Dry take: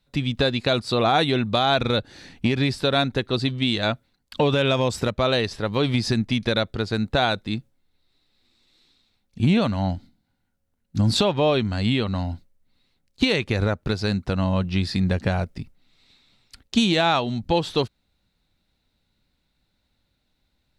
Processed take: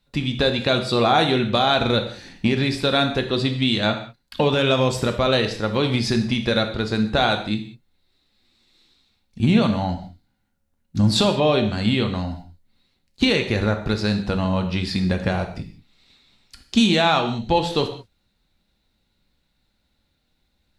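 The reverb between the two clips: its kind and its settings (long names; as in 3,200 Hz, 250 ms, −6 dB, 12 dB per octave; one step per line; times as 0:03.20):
reverb whose tail is shaped and stops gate 220 ms falling, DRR 5 dB
level +1 dB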